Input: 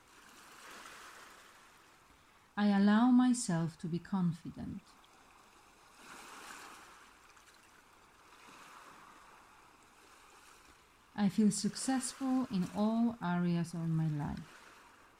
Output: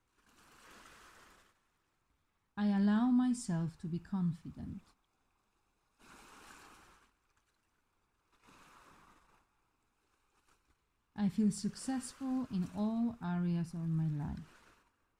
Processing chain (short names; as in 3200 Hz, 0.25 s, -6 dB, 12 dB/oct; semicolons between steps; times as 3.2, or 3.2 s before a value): gate -57 dBFS, range -12 dB; low shelf 190 Hz +11 dB; gain -7 dB